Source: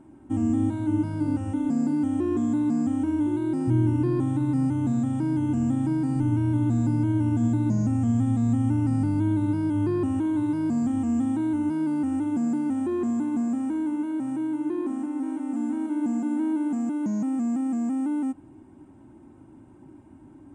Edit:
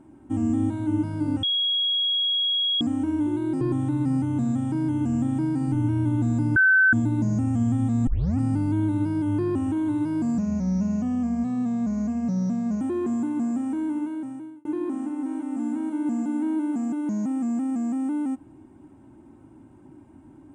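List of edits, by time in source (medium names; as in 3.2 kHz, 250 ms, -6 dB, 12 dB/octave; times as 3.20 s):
1.43–2.81 s: bleep 3.31 kHz -20.5 dBFS
3.61–4.09 s: delete
7.04–7.41 s: bleep 1.53 kHz -14 dBFS
8.55 s: tape start 0.33 s
10.86–12.78 s: speed 79%
13.96–14.62 s: fade out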